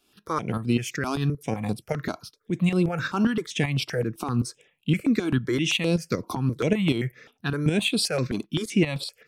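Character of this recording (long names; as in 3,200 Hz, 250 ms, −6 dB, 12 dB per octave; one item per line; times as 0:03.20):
tremolo saw up 5.2 Hz, depth 60%
notches that jump at a steady rate 7.7 Hz 510–6,300 Hz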